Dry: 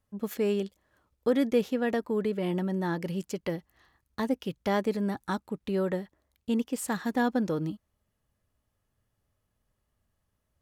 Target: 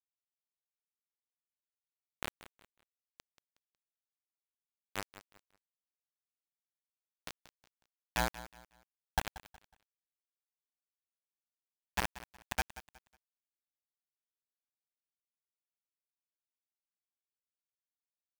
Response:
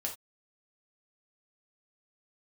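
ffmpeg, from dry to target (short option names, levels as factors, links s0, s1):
-af "aecho=1:1:5.7:0.67,asetrate=25442,aresample=44100,bandpass=f=820:t=q:w=7.8:csg=0,acrusher=bits=3:dc=4:mix=0:aa=0.000001,aecho=1:1:183|366|549:0.158|0.0475|0.0143,aeval=exprs='val(0)*sin(2*PI*60*n/s)':c=same,volume=3.55"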